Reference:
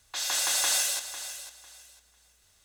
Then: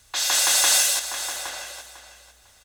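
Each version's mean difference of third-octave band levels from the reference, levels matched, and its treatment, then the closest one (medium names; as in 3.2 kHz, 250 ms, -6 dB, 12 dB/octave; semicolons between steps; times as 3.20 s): 3.0 dB: echo from a far wall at 140 m, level -7 dB; trim +7.5 dB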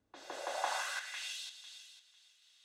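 6.5 dB: band-pass sweep 280 Hz -> 3.4 kHz, 0.16–1.37 s; trim +5.5 dB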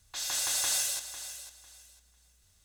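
2.0 dB: tone controls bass +11 dB, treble +4 dB; trim -6.5 dB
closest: third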